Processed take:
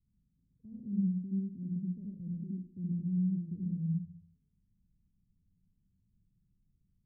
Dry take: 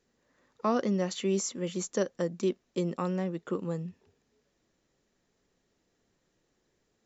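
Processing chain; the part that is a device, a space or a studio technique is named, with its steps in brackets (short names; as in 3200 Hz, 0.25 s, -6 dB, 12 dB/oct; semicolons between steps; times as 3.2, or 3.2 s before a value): club heard from the street (limiter -26.5 dBFS, peak gain reduction 11.5 dB; LPF 150 Hz 24 dB/oct; reverb RT60 0.55 s, pre-delay 69 ms, DRR -2 dB); gain +5.5 dB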